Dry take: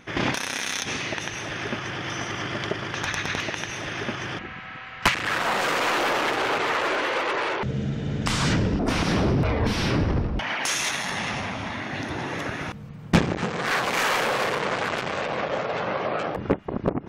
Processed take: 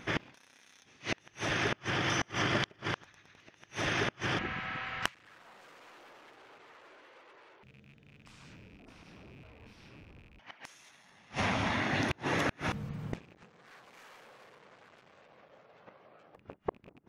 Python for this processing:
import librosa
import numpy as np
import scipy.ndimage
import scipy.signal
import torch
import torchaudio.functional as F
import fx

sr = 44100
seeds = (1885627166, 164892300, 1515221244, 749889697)

y = fx.rattle_buzz(x, sr, strikes_db=-26.0, level_db=-16.0)
y = fx.gate_flip(y, sr, shuts_db=-18.0, range_db=-32)